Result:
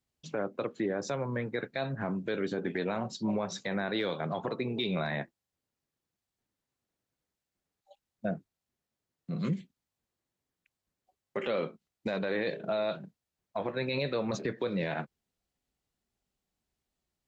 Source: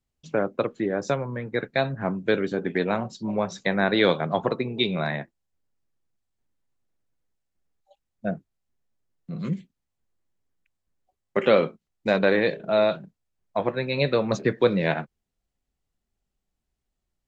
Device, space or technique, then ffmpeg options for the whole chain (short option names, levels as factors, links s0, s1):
broadcast voice chain: -af "highpass=f=110:p=1,deesser=0.65,acompressor=threshold=0.0562:ratio=5,equalizer=f=4200:t=o:w=0.77:g=2,alimiter=limit=0.0794:level=0:latency=1:release=13"